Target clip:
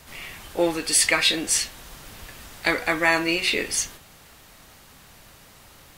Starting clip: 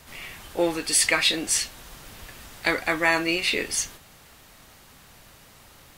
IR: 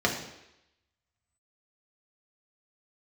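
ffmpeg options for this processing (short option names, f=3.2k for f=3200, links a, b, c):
-af "bandreject=f=121.8:t=h:w=4,bandreject=f=243.6:t=h:w=4,bandreject=f=365.4:t=h:w=4,bandreject=f=487.2:t=h:w=4,bandreject=f=609:t=h:w=4,bandreject=f=730.8:t=h:w=4,bandreject=f=852.6:t=h:w=4,bandreject=f=974.4:t=h:w=4,bandreject=f=1.0962k:t=h:w=4,bandreject=f=1.218k:t=h:w=4,bandreject=f=1.3398k:t=h:w=4,bandreject=f=1.4616k:t=h:w=4,bandreject=f=1.5834k:t=h:w=4,bandreject=f=1.7052k:t=h:w=4,bandreject=f=1.827k:t=h:w=4,bandreject=f=1.9488k:t=h:w=4,bandreject=f=2.0706k:t=h:w=4,bandreject=f=2.1924k:t=h:w=4,bandreject=f=2.3142k:t=h:w=4,bandreject=f=2.436k:t=h:w=4,bandreject=f=2.5578k:t=h:w=4,bandreject=f=2.6796k:t=h:w=4,bandreject=f=2.8014k:t=h:w=4,bandreject=f=2.9232k:t=h:w=4,bandreject=f=3.045k:t=h:w=4,bandreject=f=3.1668k:t=h:w=4,bandreject=f=3.2886k:t=h:w=4,bandreject=f=3.4104k:t=h:w=4,bandreject=f=3.5322k:t=h:w=4,bandreject=f=3.654k:t=h:w=4,bandreject=f=3.7758k:t=h:w=4,volume=1.5dB"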